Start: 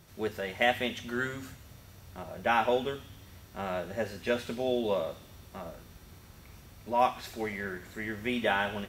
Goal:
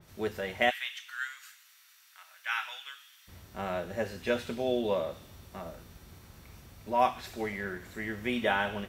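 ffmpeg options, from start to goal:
-filter_complex "[0:a]asplit=3[a][b][c];[a]afade=t=out:st=0.69:d=0.02[d];[b]highpass=f=1.4k:w=0.5412,highpass=f=1.4k:w=1.3066,afade=t=in:st=0.69:d=0.02,afade=t=out:st=3.27:d=0.02[e];[c]afade=t=in:st=3.27:d=0.02[f];[d][e][f]amix=inputs=3:normalize=0,adynamicequalizer=threshold=0.00562:dfrequency=3700:dqfactor=0.7:tfrequency=3700:tqfactor=0.7:attack=5:release=100:ratio=0.375:range=2:mode=cutabove:tftype=highshelf"

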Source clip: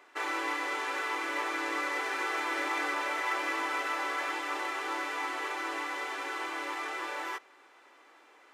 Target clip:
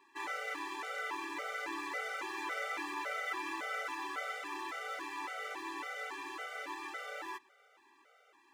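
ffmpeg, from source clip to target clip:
-af "acrusher=bits=8:mode=log:mix=0:aa=0.000001,afftfilt=real='re*gt(sin(2*PI*1.8*pts/sr)*(1-2*mod(floor(b*sr/1024/390),2)),0)':imag='im*gt(sin(2*PI*1.8*pts/sr)*(1-2*mod(floor(b*sr/1024/390),2)),0)':win_size=1024:overlap=0.75,volume=-3.5dB"

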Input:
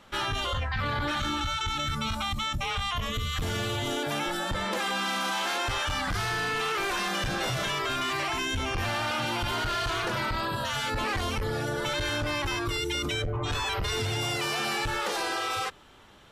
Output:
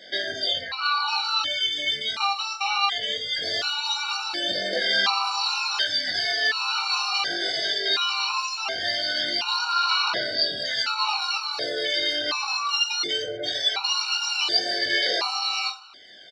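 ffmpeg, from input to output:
-filter_complex "[0:a]highpass=460,alimiter=level_in=1dB:limit=-24dB:level=0:latency=1:release=407,volume=-1dB,lowpass=f=4.6k:t=q:w=6.9,asplit=2[a][b];[b]aecho=0:1:20|44|72.8|107.4|148.8:0.631|0.398|0.251|0.158|0.1[c];[a][c]amix=inputs=2:normalize=0,aphaser=in_gain=1:out_gain=1:delay=2.6:decay=0.46:speed=0.2:type=sinusoidal,afftfilt=real='re*gt(sin(2*PI*0.69*pts/sr)*(1-2*mod(floor(b*sr/1024/750),2)),0)':imag='im*gt(sin(2*PI*0.69*pts/sr)*(1-2*mod(floor(b*sr/1024/750),2)),0)':win_size=1024:overlap=0.75,volume=5dB"

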